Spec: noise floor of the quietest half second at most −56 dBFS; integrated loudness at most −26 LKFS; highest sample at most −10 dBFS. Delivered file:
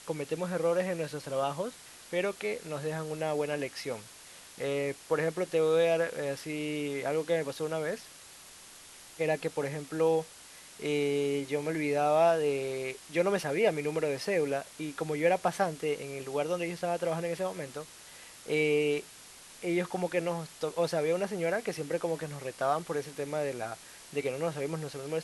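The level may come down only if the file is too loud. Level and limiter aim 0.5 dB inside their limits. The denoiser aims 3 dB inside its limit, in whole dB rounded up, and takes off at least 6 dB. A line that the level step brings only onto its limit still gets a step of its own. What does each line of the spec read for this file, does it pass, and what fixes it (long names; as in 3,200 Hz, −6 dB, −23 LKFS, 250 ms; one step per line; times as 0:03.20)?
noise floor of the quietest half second −51 dBFS: out of spec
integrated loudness −31.5 LKFS: in spec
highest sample −13.5 dBFS: in spec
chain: broadband denoise 8 dB, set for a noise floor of −51 dBFS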